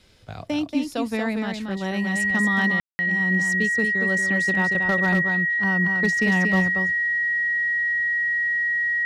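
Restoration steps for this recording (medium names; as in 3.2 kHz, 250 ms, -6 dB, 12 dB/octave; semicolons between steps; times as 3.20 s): clip repair -13 dBFS; band-stop 1.9 kHz, Q 30; room tone fill 2.80–2.99 s; inverse comb 232 ms -5.5 dB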